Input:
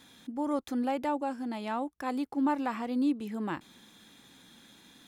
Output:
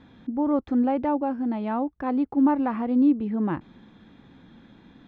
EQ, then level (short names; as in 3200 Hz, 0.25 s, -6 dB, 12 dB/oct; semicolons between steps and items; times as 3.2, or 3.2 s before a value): tape spacing loss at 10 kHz 44 dB; low shelf 150 Hz +8.5 dB; +8.0 dB